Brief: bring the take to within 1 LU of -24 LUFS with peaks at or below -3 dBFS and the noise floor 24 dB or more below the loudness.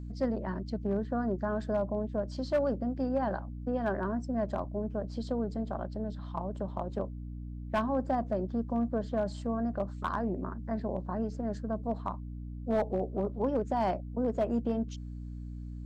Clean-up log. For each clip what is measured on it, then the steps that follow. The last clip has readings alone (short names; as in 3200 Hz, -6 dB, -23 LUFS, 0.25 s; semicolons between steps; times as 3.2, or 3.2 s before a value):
clipped 0.4%; flat tops at -22.0 dBFS; hum 60 Hz; harmonics up to 300 Hz; hum level -38 dBFS; loudness -33.5 LUFS; peak -22.0 dBFS; loudness target -24.0 LUFS
-> clip repair -22 dBFS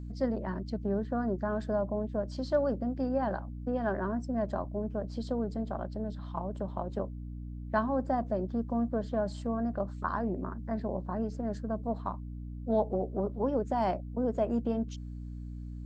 clipped 0.0%; hum 60 Hz; harmonics up to 300 Hz; hum level -38 dBFS
-> de-hum 60 Hz, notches 5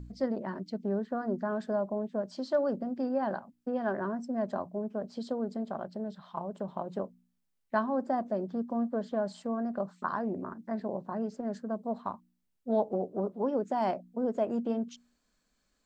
hum none; loudness -34.0 LUFS; peak -14.5 dBFS; loudness target -24.0 LUFS
-> gain +10 dB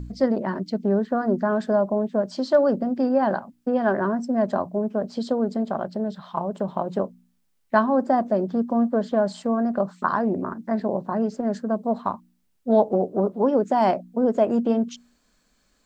loudness -24.0 LUFS; peak -4.5 dBFS; noise floor -68 dBFS